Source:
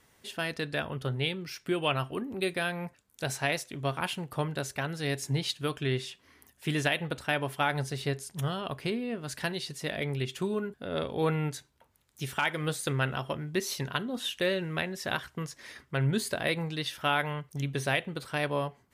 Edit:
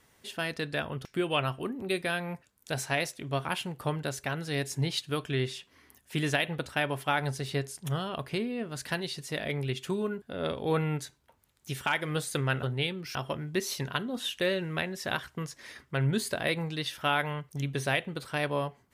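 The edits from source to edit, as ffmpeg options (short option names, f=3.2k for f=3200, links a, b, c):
-filter_complex "[0:a]asplit=4[a][b][c][d];[a]atrim=end=1.052[e];[b]atrim=start=1.568:end=13.152[f];[c]atrim=start=1.048:end=1.572[g];[d]atrim=start=13.148[h];[e][f]acrossfade=d=0.004:c1=hsin:c2=hsin[i];[i][g]acrossfade=d=0.004:c1=hsin:c2=hsin[j];[j][h]acrossfade=d=0.004:c1=hsin:c2=hsin"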